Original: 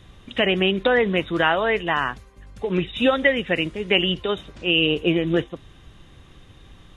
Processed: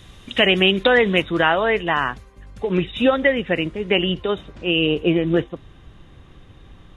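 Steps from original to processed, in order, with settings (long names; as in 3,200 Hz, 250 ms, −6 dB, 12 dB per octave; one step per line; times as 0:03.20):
high-shelf EQ 2,900 Hz +7.5 dB, from 0:01.22 −3 dB, from 0:03.02 −9 dB
level +2.5 dB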